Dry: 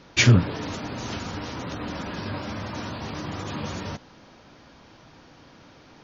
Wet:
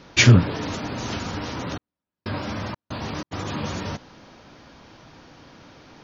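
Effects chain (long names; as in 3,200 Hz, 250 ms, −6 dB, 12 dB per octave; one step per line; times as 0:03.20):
0:01.70–0:03.31: gate pattern "...xxx.xx.x" 93 BPM −60 dB
level +3 dB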